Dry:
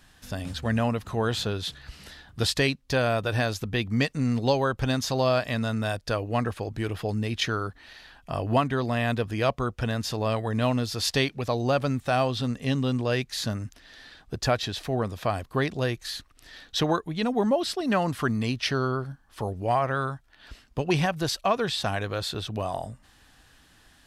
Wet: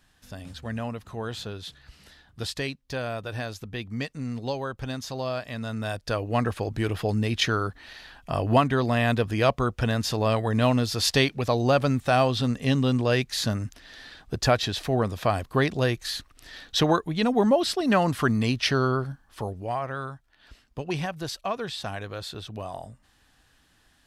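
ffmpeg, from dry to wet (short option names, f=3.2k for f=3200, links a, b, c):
-af "volume=3dB,afade=t=in:st=5.51:d=1.11:silence=0.316228,afade=t=out:st=19.06:d=0.64:silence=0.375837"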